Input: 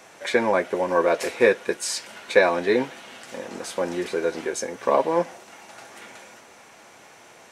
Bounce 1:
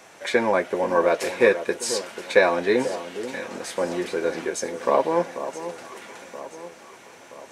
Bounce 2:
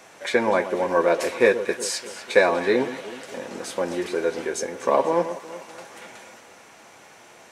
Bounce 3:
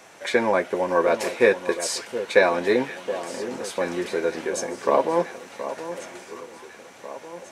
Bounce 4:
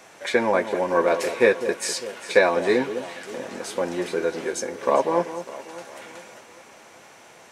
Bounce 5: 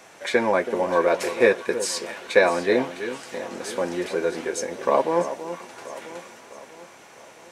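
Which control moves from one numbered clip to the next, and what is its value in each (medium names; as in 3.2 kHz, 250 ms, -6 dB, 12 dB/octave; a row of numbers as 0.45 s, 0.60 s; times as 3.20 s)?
echo whose repeats swap between lows and highs, time: 488 ms, 123 ms, 722 ms, 200 ms, 327 ms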